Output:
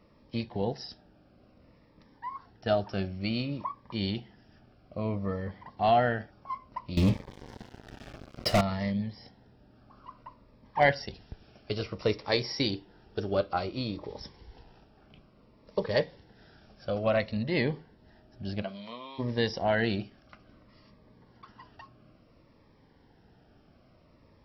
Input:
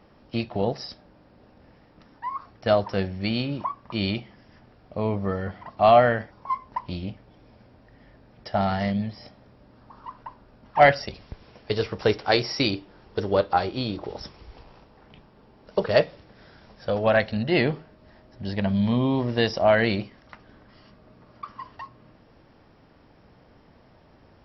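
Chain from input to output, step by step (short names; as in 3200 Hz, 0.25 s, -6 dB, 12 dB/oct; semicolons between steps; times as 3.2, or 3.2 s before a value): 6.97–8.61 sample leveller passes 5; 18.61–19.18 HPF 350 Hz -> 1400 Hz 12 dB/oct; cascading phaser falling 0.58 Hz; gain -4.5 dB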